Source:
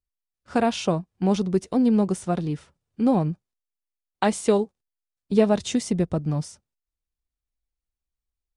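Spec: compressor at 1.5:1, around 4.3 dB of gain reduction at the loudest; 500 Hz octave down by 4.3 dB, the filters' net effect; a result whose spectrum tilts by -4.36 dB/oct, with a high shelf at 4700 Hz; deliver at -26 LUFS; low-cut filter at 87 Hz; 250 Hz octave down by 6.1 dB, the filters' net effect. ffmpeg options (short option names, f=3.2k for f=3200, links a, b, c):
-af "highpass=87,equalizer=f=250:t=o:g=-7,equalizer=f=500:t=o:g=-3.5,highshelf=f=4.7k:g=8,acompressor=threshold=-30dB:ratio=1.5,volume=5dB"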